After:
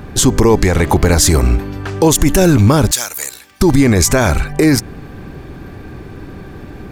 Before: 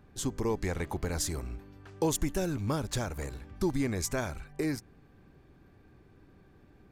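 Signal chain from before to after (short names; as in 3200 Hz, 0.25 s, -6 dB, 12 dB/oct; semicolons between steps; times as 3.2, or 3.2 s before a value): 2.91–3.61 differentiator; maximiser +28 dB; gain -1 dB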